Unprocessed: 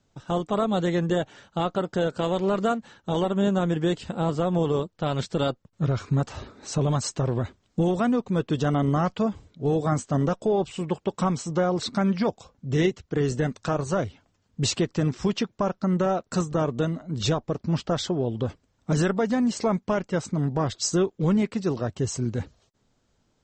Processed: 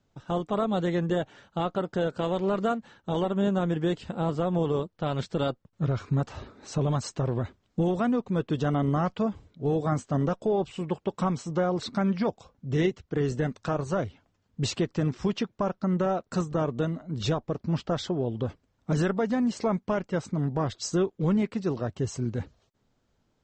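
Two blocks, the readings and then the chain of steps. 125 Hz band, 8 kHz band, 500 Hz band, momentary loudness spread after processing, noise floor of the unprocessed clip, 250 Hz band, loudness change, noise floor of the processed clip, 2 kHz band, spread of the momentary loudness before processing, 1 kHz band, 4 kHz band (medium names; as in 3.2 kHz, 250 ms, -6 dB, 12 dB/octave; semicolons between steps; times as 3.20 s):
-2.5 dB, -8.0 dB, -2.5 dB, 6 LU, -70 dBFS, -2.5 dB, -2.5 dB, -73 dBFS, -3.0 dB, 6 LU, -2.5 dB, -5.0 dB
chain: treble shelf 6.5 kHz -10.5 dB; trim -2.5 dB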